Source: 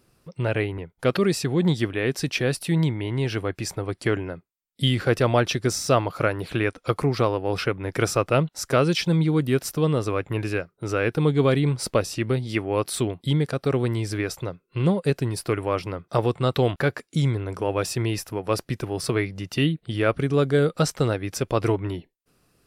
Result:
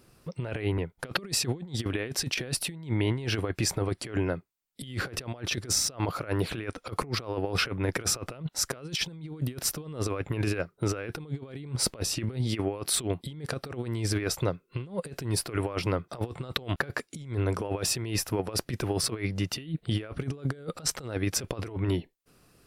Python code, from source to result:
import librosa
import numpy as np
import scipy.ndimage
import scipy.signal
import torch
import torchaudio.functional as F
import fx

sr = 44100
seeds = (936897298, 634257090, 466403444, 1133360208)

y = fx.over_compress(x, sr, threshold_db=-28.0, ratio=-0.5)
y = F.gain(torch.from_numpy(y), -2.0).numpy()